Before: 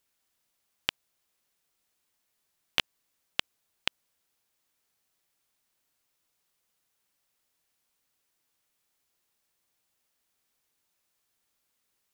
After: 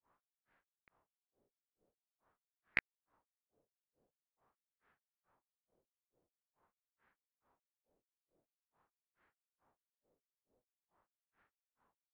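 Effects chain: self-modulated delay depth 0.097 ms; LFO low-pass sine 0.46 Hz 590–2200 Hz; grains 0.221 s, grains 2.3/s, spray 26 ms, pitch spread up and down by 0 st; formant shift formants -5 st; air absorption 190 m; gain +8 dB

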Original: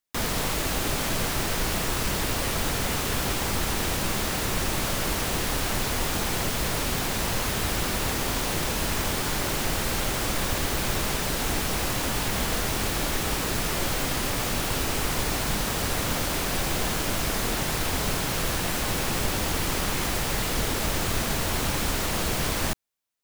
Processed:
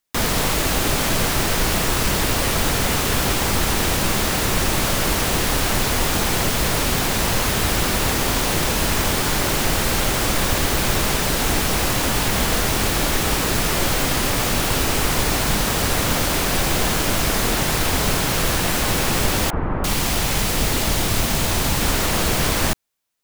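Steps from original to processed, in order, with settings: 19.5–21.81 three bands offset in time mids, lows, highs 30/340 ms, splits 450/1500 Hz; gain +7 dB

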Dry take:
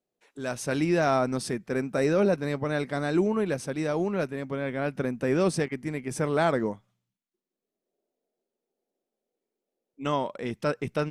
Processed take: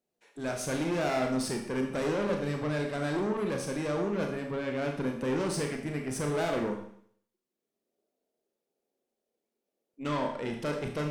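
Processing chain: tube stage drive 28 dB, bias 0.35; Schroeder reverb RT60 0.62 s, combs from 27 ms, DRR 2.5 dB

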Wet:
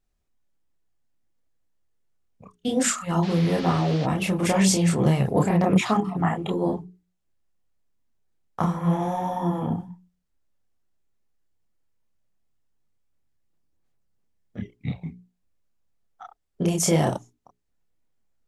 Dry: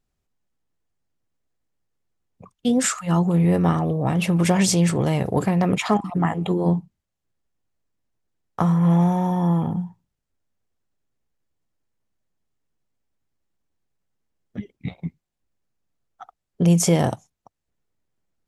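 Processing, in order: notches 60/120/180/240/300/360/420 Hz; chorus voices 6, 1.5 Hz, delay 29 ms, depth 3 ms; 3.22–4.05 band noise 480–4700 Hz -42 dBFS; gain +2 dB

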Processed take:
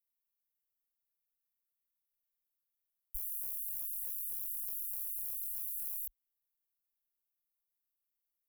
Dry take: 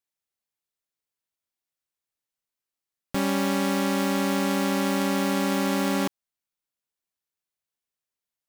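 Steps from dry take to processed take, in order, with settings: inverse Chebyshev band-stop 160–3500 Hz, stop band 70 dB; gain +5 dB

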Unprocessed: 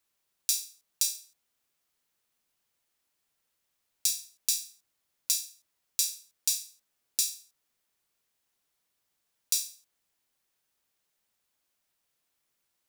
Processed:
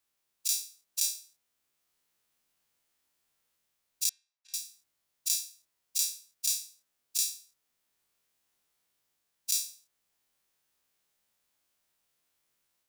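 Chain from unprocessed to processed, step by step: spectral dilation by 60 ms; AGC gain up to 3 dB; 4.09–4.54 ladder band-pass 1200 Hz, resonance 25%; gain -5.5 dB

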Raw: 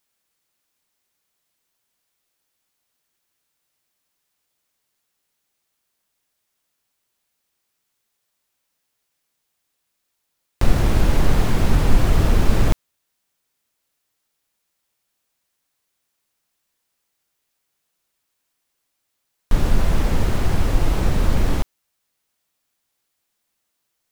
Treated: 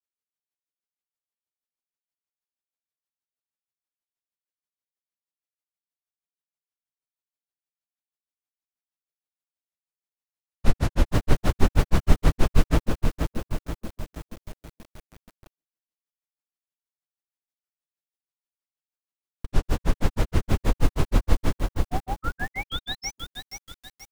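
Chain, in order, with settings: tape echo 0.412 s, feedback 46%, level -3.5 dB, low-pass 1000 Hz; painted sound rise, 21.84–23.17, 530–6800 Hz -29 dBFS; grains 0.102 s, grains 6.3/s; gate with hold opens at -49 dBFS; lo-fi delay 0.478 s, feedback 55%, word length 7-bit, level -5.5 dB

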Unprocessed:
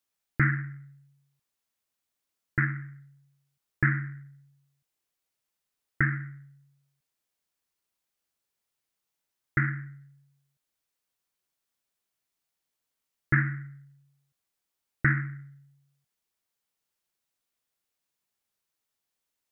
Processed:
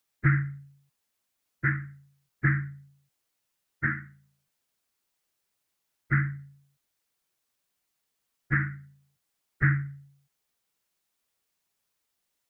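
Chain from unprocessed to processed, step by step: in parallel at +3 dB: limiter -21.5 dBFS, peak gain reduction 10.5 dB; on the sum: plain phase-vocoder stretch 0.64×

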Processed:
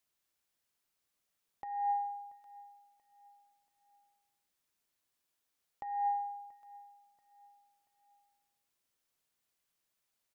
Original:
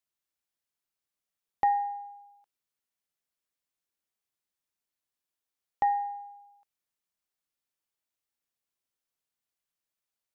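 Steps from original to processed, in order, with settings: negative-ratio compressor -35 dBFS, ratio -1; feedback echo 0.683 s, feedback 38%, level -21 dB

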